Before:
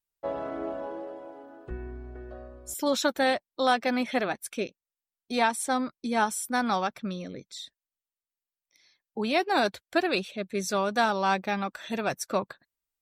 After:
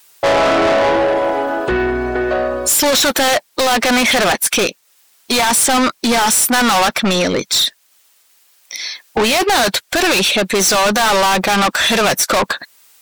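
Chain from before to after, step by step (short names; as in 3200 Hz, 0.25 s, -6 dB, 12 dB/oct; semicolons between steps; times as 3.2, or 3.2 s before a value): overdrive pedal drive 35 dB, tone 3700 Hz, clips at -10.5 dBFS; high shelf 4300 Hz +11 dB; in parallel at +3 dB: compressor, threshold -35 dBFS, peak gain reduction 18.5 dB; on the sum: limiter -13 dBFS, peak gain reduction 4 dB; gain +3 dB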